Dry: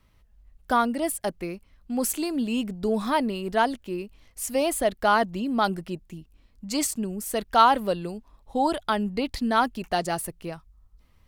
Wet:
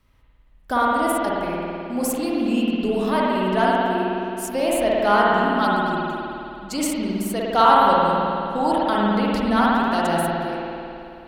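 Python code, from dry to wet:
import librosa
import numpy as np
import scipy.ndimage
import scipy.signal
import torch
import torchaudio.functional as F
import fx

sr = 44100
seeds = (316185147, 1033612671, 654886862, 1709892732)

y = fx.rev_spring(x, sr, rt60_s=2.8, pass_ms=(53,), chirp_ms=65, drr_db=-5.5)
y = y * librosa.db_to_amplitude(-1.0)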